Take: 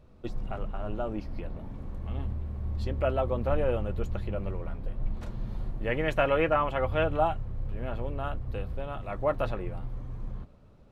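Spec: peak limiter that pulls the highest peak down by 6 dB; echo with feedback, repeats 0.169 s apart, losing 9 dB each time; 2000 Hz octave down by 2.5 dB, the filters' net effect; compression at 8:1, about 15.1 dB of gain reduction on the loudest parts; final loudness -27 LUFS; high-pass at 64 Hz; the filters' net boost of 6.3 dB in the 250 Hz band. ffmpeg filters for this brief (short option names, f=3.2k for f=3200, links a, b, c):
-af "highpass=64,equalizer=f=250:t=o:g=8.5,equalizer=f=2k:t=o:g=-3.5,acompressor=threshold=-36dB:ratio=8,alimiter=level_in=8.5dB:limit=-24dB:level=0:latency=1,volume=-8.5dB,aecho=1:1:169|338|507|676:0.355|0.124|0.0435|0.0152,volume=15dB"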